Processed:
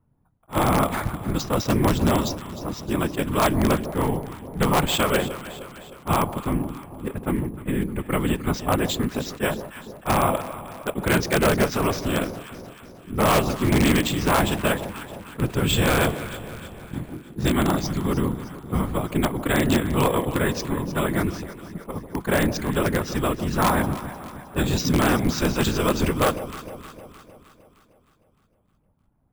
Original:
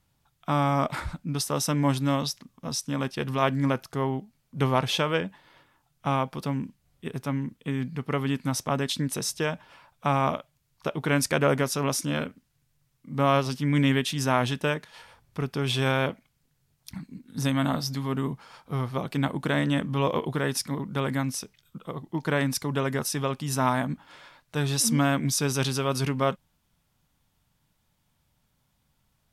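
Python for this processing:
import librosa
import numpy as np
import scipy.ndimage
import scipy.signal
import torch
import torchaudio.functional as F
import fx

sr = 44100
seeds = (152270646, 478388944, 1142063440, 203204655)

p1 = fx.zero_step(x, sr, step_db=-39.0, at=(15.39, 17.16))
p2 = fx.env_lowpass(p1, sr, base_hz=820.0, full_db=-21.5)
p3 = scipy.signal.sosfilt(scipy.signal.butter(4, 4800.0, 'lowpass', fs=sr, output='sos'), p2)
p4 = fx.peak_eq(p3, sr, hz=77.0, db=4.5, octaves=0.36)
p5 = fx.whisperise(p4, sr, seeds[0])
p6 = (np.mod(10.0 ** (15.0 / 20.0) * p5 + 1.0, 2.0) - 1.0) / 10.0 ** (15.0 / 20.0)
p7 = p5 + (p6 * 10.0 ** (-3.5 / 20.0))
p8 = fx.echo_alternate(p7, sr, ms=154, hz=920.0, feedback_pct=73, wet_db=-11)
p9 = np.repeat(p8[::4], 4)[:len(p8)]
y = fx.attack_slew(p9, sr, db_per_s=390.0)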